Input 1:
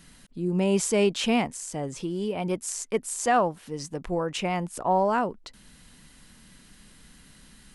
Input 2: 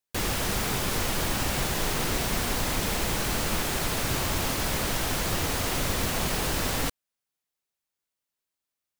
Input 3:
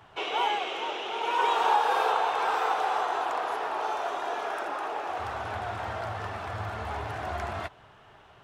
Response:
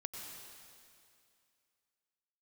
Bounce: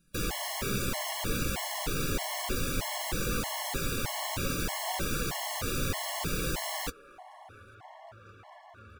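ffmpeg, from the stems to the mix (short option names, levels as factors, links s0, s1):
-filter_complex "[0:a]acrusher=bits=3:mode=log:mix=0:aa=0.000001,volume=0.299[s0];[1:a]volume=1.26[s1];[2:a]flanger=delay=1.8:depth=1.9:regen=-62:speed=1.7:shape=triangular,acompressor=threshold=0.0126:ratio=6,adelay=2050,volume=0.75[s2];[s0][s1][s2]amix=inputs=3:normalize=0,flanger=delay=5.6:depth=2.8:regen=-54:speed=0.61:shape=triangular,afftfilt=real='re*gt(sin(2*PI*1.6*pts/sr)*(1-2*mod(floor(b*sr/1024/560),2)),0)':imag='im*gt(sin(2*PI*1.6*pts/sr)*(1-2*mod(floor(b*sr/1024/560),2)),0)':win_size=1024:overlap=0.75"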